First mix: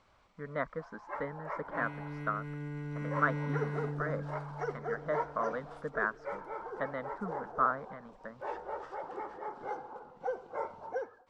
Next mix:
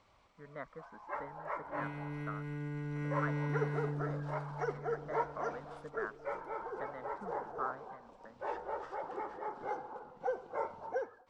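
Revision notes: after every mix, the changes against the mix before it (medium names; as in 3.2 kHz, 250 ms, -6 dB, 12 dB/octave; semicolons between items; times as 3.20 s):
speech -10.5 dB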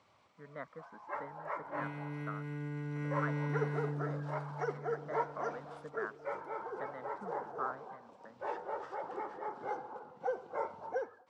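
master: add high-pass 93 Hz 24 dB/octave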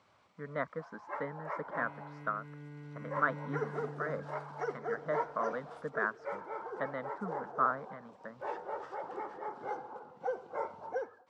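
speech +9.5 dB; second sound -8.0 dB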